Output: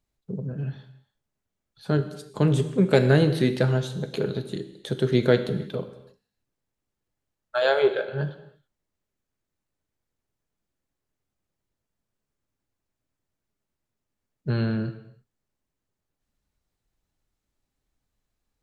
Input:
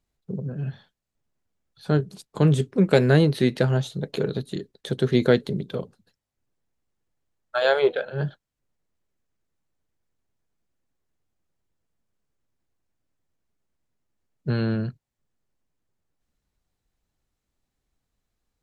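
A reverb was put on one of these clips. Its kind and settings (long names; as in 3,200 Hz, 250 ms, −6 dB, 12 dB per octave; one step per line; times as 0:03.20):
reverb whose tail is shaped and stops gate 350 ms falling, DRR 8.5 dB
level −1.5 dB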